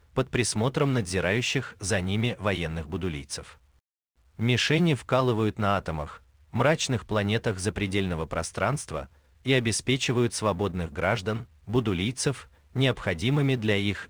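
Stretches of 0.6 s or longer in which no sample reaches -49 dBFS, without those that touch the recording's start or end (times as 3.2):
3.57–4.39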